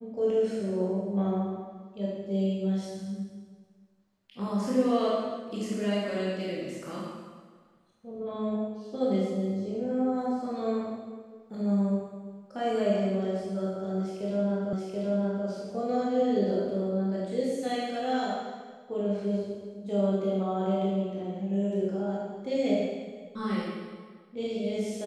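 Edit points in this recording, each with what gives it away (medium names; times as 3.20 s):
14.73 s: repeat of the last 0.73 s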